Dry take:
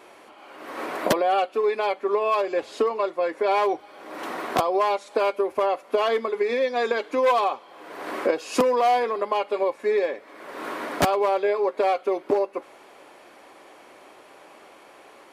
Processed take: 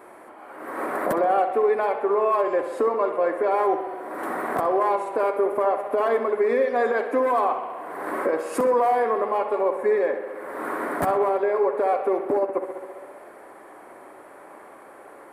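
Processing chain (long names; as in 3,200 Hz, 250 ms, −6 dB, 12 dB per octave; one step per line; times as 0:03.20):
brickwall limiter −17 dBFS, peak gain reduction 9 dB
flat-topped bell 4,100 Hz −15 dB
on a send: tape delay 65 ms, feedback 85%, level −8.5 dB, low-pass 4,000 Hz
on the sum: level +3 dB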